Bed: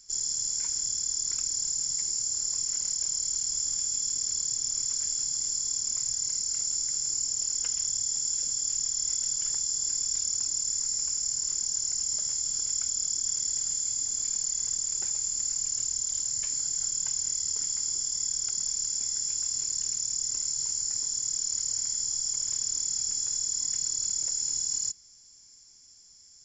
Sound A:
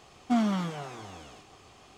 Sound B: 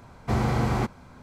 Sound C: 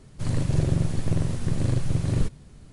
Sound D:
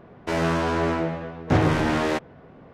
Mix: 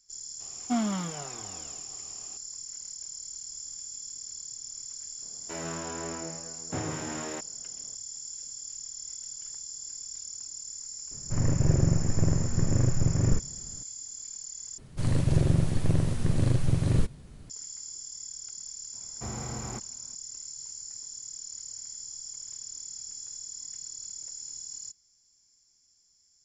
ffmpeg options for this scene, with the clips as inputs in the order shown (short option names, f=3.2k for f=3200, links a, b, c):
-filter_complex "[3:a]asplit=2[a][b];[0:a]volume=-11dB[c];[4:a]highpass=92[d];[a]lowpass=f=2.2k:w=0.5412,lowpass=f=2.2k:w=1.3066[e];[c]asplit=2[f][g];[f]atrim=end=14.784[h];[b]atrim=end=2.72,asetpts=PTS-STARTPTS,volume=-0.5dB[i];[g]atrim=start=17.496[j];[1:a]atrim=end=1.97,asetpts=PTS-STARTPTS,volume=-2.5dB,afade=t=in:d=0.004:c=hsin,afade=t=out:st=1.966:d=0.004:c=hsin,adelay=400[k];[d]atrim=end=2.73,asetpts=PTS-STARTPTS,volume=-14dB,afade=t=in:d=0.004:c=hsin,afade=t=out:st=2.726:d=0.004:c=hsin,adelay=5220[l];[e]atrim=end=2.72,asetpts=PTS-STARTPTS,volume=-0.5dB,afade=t=in:d=0.004:c=hsin,afade=t=out:st=2.716:d=0.004:c=hsin,adelay=11110[m];[2:a]atrim=end=1.22,asetpts=PTS-STARTPTS,volume=-13.5dB,afade=t=in:d=0.004:c=hsin,afade=t=out:st=1.216:d=0.004:c=hsin,adelay=18930[n];[h][i]acrossfade=d=0.004:c1=hsin:c2=hsin[o];[o][j]acrossfade=d=0.004:c1=hsin:c2=hsin[p];[p][k][l][m][n]amix=inputs=5:normalize=0"